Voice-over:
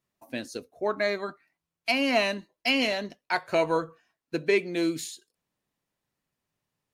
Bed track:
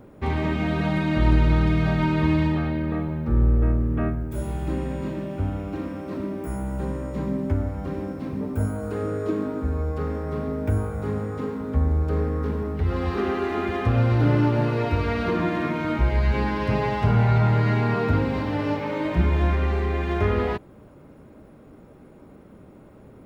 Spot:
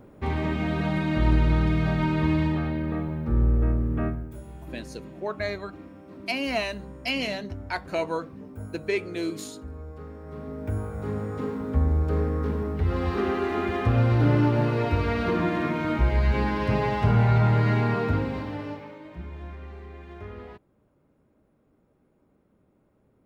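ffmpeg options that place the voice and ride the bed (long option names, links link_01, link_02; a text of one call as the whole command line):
ffmpeg -i stem1.wav -i stem2.wav -filter_complex "[0:a]adelay=4400,volume=-3.5dB[link_01];[1:a]volume=10dB,afade=type=out:start_time=4.06:duration=0.35:silence=0.281838,afade=type=in:start_time=10.17:duration=1.33:silence=0.237137,afade=type=out:start_time=17.79:duration=1.2:silence=0.141254[link_02];[link_01][link_02]amix=inputs=2:normalize=0" out.wav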